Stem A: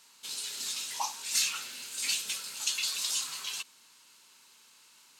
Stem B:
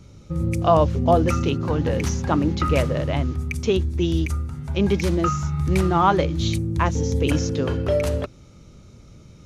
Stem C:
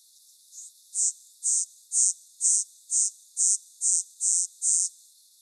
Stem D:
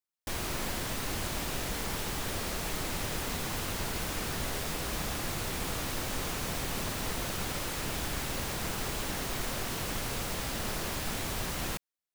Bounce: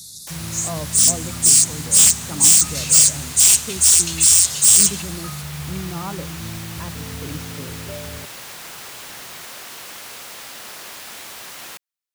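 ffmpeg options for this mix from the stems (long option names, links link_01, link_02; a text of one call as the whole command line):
ffmpeg -i stem1.wav -i stem2.wav -i stem3.wav -i stem4.wav -filter_complex "[0:a]dynaudnorm=framelen=860:gausssize=3:maxgain=11dB,adelay=1400,volume=-7.5dB[link_01];[1:a]equalizer=frequency=160:width_type=o:width=1.3:gain=10,volume=-15.5dB[link_02];[2:a]aeval=exprs='0.501*sin(PI/2*5.01*val(0)/0.501)':channel_layout=same,volume=1dB[link_03];[3:a]highpass=frequency=1100:poles=1,volume=2dB[link_04];[link_01][link_02][link_03][link_04]amix=inputs=4:normalize=0" out.wav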